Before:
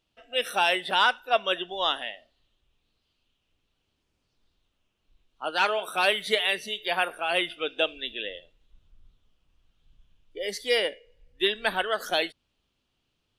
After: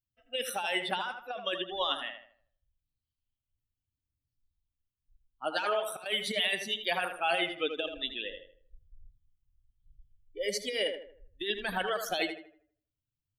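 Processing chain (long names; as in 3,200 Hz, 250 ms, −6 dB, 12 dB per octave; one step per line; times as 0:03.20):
spectral dynamics exaggerated over time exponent 1.5
compressor whose output falls as the input rises −31 dBFS, ratio −1
0:05.59–0:06.06: volume swells 399 ms
tape delay 80 ms, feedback 41%, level −6 dB, low-pass 2,200 Hz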